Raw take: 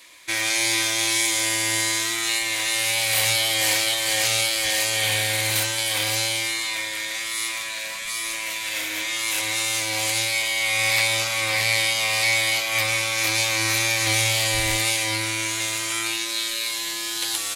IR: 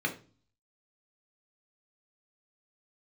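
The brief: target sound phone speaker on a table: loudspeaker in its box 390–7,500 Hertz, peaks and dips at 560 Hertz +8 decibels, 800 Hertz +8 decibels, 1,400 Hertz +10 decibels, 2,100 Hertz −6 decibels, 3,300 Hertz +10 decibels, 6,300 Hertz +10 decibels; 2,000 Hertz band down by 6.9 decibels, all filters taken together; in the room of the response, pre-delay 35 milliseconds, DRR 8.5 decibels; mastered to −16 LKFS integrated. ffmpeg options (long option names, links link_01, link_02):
-filter_complex "[0:a]equalizer=frequency=2000:width_type=o:gain=-8,asplit=2[link_01][link_02];[1:a]atrim=start_sample=2205,adelay=35[link_03];[link_02][link_03]afir=irnorm=-1:irlink=0,volume=-15.5dB[link_04];[link_01][link_04]amix=inputs=2:normalize=0,highpass=frequency=390:width=0.5412,highpass=frequency=390:width=1.3066,equalizer=frequency=560:width_type=q:width=4:gain=8,equalizer=frequency=800:width_type=q:width=4:gain=8,equalizer=frequency=1400:width_type=q:width=4:gain=10,equalizer=frequency=2100:width_type=q:width=4:gain=-6,equalizer=frequency=3300:width_type=q:width=4:gain=10,equalizer=frequency=6300:width_type=q:width=4:gain=10,lowpass=frequency=7500:width=0.5412,lowpass=frequency=7500:width=1.3066,volume=3dB"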